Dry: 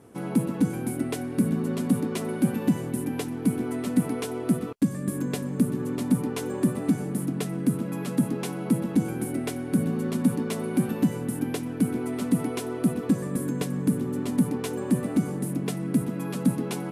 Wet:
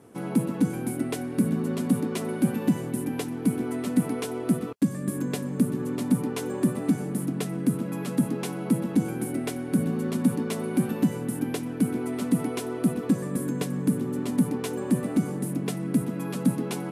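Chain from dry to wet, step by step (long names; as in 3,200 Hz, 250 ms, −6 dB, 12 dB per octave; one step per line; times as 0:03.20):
high-pass filter 96 Hz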